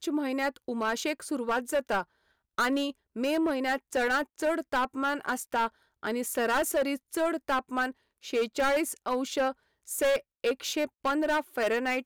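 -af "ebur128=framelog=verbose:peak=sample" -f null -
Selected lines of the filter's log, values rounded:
Integrated loudness:
  I:         -29.7 LUFS
  Threshold: -39.8 LUFS
Loudness range:
  LRA:         1.1 LU
  Threshold: -49.9 LUFS
  LRA low:   -30.5 LUFS
  LRA high:  -29.4 LUFS
Sample peak:
  Peak:      -20.6 dBFS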